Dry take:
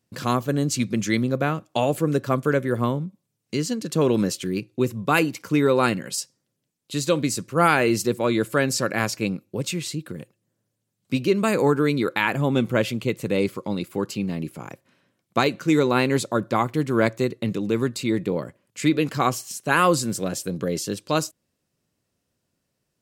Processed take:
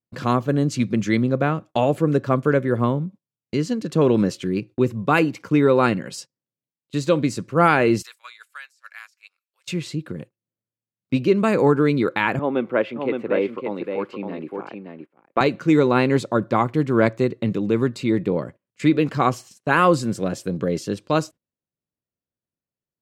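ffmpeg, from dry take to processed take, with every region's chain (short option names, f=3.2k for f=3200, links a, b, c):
-filter_complex "[0:a]asettb=1/sr,asplit=3[a][b][c];[a]atrim=end=8.024[d];[b]atrim=start=8.02:end=9.67,asetpts=PTS-STARTPTS,afade=t=in:d=0.004:c=qsin,afade=t=out:st=1.646:d=0.004:c=qsin,highpass=f=1.3k:w=0.5412,highpass=f=1.3k:w=1.3066,highshelf=f=4.8k:g=12,acompressor=threshold=-34dB:ratio=6:attack=3.2:release=140:knee=1:detection=peak[e];[c]atrim=start=9.666[f];[d][e]acrossfade=d=0.004:c1=hsin:c2=qsin[g];[g][f]acrossfade=d=0.004:c1=qsin:c2=hsin,asettb=1/sr,asplit=3[h][i][j];[h]atrim=end=12.394[k];[i]atrim=start=12.39:end=15.41,asetpts=PTS-STARTPTS,afade=t=in:d=0.004:c=qsin,afade=t=out:st=3.016:d=0.004:c=qsin,acrossover=split=260 3000:gain=0.0708 1 0.0794[l][m][n];[l][m][n]amix=inputs=3:normalize=0,aecho=1:1:566:0.531,atrim=end_sample=133182[o];[j]atrim=start=15.406[p];[k][o]acrossfade=d=0.004:c1=hsin:c2=qsin[q];[q][p]acrossfade=d=0.004:c1=qsin:c2=hsin,aemphasis=mode=reproduction:type=75kf,agate=range=-20dB:threshold=-41dB:ratio=16:detection=peak,volume=3dB"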